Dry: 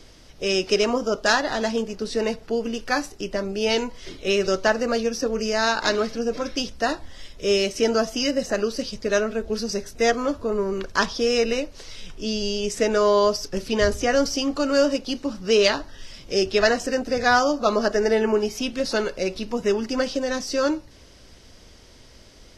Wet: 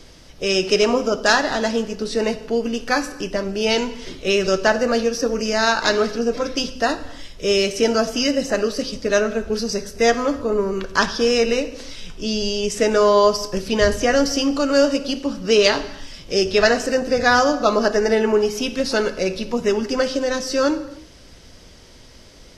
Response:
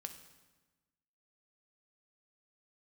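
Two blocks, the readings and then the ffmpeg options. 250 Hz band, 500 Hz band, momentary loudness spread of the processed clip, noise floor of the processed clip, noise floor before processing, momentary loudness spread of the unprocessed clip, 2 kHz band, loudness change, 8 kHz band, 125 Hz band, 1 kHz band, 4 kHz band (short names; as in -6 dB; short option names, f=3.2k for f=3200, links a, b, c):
+3.5 dB, +3.5 dB, 9 LU, -45 dBFS, -49 dBFS, 9 LU, +3.5 dB, +3.5 dB, +3.5 dB, +3.5 dB, +3.5 dB, +3.5 dB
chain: -filter_complex "[0:a]asplit=2[a][b];[1:a]atrim=start_sample=2205,afade=t=out:st=0.37:d=0.01,atrim=end_sample=16758[c];[b][c]afir=irnorm=-1:irlink=0,volume=8dB[d];[a][d]amix=inputs=2:normalize=0,volume=-4.5dB"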